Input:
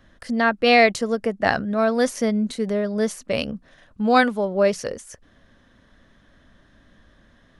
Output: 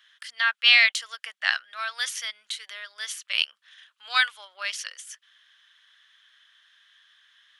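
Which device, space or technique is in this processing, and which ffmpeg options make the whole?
headphones lying on a table: -af "highpass=frequency=1400:width=0.5412,highpass=frequency=1400:width=1.3066,equalizer=frequency=3200:width_type=o:width=0.48:gain=11"

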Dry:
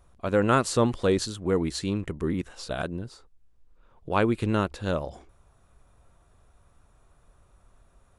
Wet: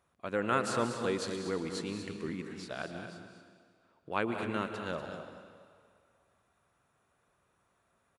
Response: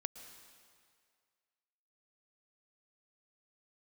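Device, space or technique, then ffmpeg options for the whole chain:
stadium PA: -filter_complex "[0:a]highpass=140,equalizer=frequency=2000:width_type=o:width=1.6:gain=6,aecho=1:1:186.6|239.1:0.251|0.316[link_01];[1:a]atrim=start_sample=2205[link_02];[link_01][link_02]afir=irnorm=-1:irlink=0,volume=-8dB"

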